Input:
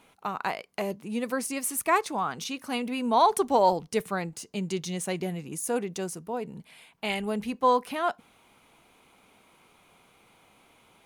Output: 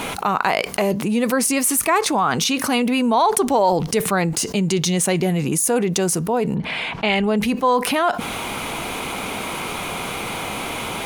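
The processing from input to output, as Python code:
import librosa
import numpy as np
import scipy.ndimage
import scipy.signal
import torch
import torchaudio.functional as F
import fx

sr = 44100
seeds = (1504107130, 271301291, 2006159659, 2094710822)

y = fx.lowpass(x, sr, hz=fx.line((6.54, 2400.0), (7.36, 5900.0)), slope=12, at=(6.54, 7.36), fade=0.02)
y = fx.env_flatten(y, sr, amount_pct=70)
y = F.gain(torch.from_numpy(y), 2.5).numpy()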